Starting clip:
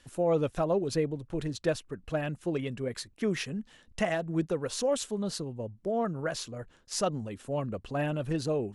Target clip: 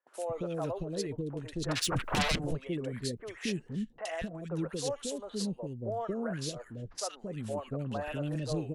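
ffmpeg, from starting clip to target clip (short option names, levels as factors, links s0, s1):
-filter_complex "[0:a]agate=range=0.1:threshold=0.00282:ratio=16:detection=peak,alimiter=level_in=1.41:limit=0.0631:level=0:latency=1:release=497,volume=0.708,asplit=3[s0][s1][s2];[s0]afade=t=out:st=1.68:d=0.02[s3];[s1]aeval=exprs='0.0447*sin(PI/2*5.62*val(0)/0.0447)':c=same,afade=t=in:st=1.68:d=0.02,afade=t=out:st=2.31:d=0.02[s4];[s2]afade=t=in:st=2.31:d=0.02[s5];[s3][s4][s5]amix=inputs=3:normalize=0,acrossover=split=470|1600[s6][s7][s8];[s8]adelay=70[s9];[s6]adelay=230[s10];[s10][s7][s9]amix=inputs=3:normalize=0,volume=1.41"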